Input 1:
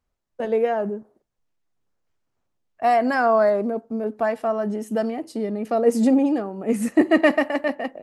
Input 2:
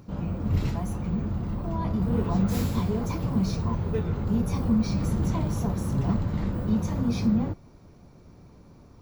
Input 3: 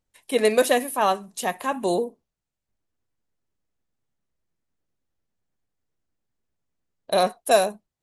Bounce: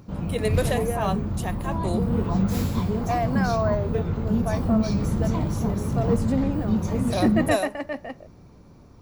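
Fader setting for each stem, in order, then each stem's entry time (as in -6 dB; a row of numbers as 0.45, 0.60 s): -7.5, +1.5, -7.0 dB; 0.25, 0.00, 0.00 s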